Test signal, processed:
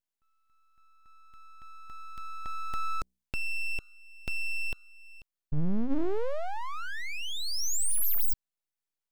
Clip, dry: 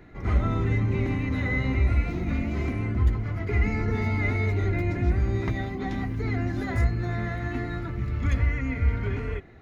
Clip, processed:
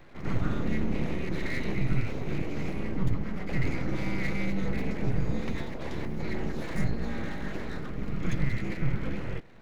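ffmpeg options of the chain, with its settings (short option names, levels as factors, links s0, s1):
-filter_complex "[0:a]bandreject=f=62.36:t=h:w=4,bandreject=f=124.72:t=h:w=4,acrossover=split=250|3000[s0][s1][s2];[s1]acompressor=threshold=0.00398:ratio=1.5[s3];[s0][s3][s2]amix=inputs=3:normalize=0,aeval=exprs='abs(val(0))':c=same"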